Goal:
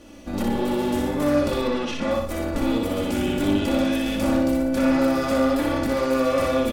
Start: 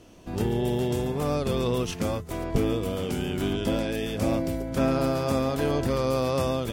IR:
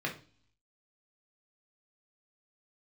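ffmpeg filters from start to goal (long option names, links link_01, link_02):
-filter_complex "[0:a]asettb=1/sr,asplit=3[link_01][link_02][link_03];[link_01]atrim=end=1.614[link_04];[link_02]atrim=start=1.61:end=2.11,asetpts=PTS-STARTPTS,afade=type=in:duration=0.004:curve=qsin,afade=type=out:start_time=0.496:duration=0.004:curve=qsin,highpass=140,lowpass=4100[link_05];[link_03]atrim=start=2.106[link_06];[link_04][link_05]acrossfade=duration=0.004:curve1=hsin:curve2=qsin[link_07];[link_07][link_06]acrossfade=duration=0.004:curve1=qsin:curve2=hsin,aeval=exprs='(tanh(22.4*val(0)+0.45)-tanh(0.45))/22.4':channel_layout=same,aecho=1:1:3.5:0.81,aecho=1:1:61|122|183|244:0.668|0.227|0.0773|0.0263,asplit=2[link_08][link_09];[1:a]atrim=start_sample=2205[link_10];[link_09][link_10]afir=irnorm=-1:irlink=0,volume=-11.5dB[link_11];[link_08][link_11]amix=inputs=2:normalize=0,volume=3dB"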